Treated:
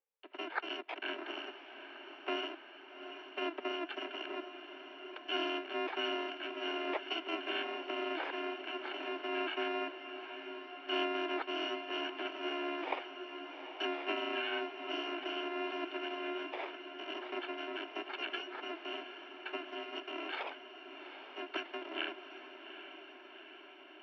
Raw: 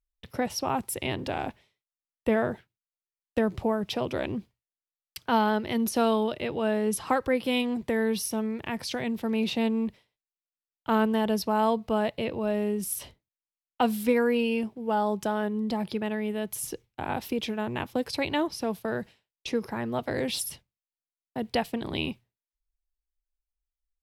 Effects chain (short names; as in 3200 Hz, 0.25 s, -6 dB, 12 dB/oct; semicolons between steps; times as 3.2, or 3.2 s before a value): FFT order left unsorted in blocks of 128 samples; notch 1300 Hz, Q 22; diffused feedback echo 0.794 s, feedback 69%, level -10 dB; mistuned SSB +150 Hz 180–2800 Hz; gain +1 dB